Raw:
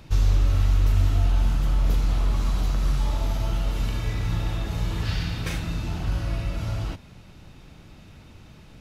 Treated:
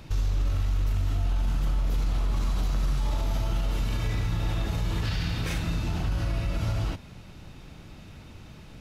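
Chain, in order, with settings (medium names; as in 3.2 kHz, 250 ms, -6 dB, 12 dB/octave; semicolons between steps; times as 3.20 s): peak limiter -21 dBFS, peak gain reduction 9.5 dB; trim +1.5 dB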